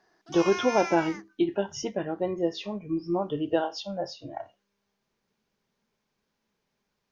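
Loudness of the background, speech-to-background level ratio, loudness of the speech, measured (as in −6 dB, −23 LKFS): −35.0 LKFS, 6.5 dB, −28.5 LKFS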